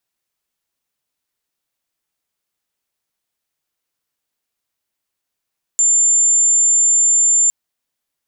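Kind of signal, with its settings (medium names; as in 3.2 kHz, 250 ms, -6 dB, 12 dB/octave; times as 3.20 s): tone sine 7.22 kHz -10 dBFS 1.71 s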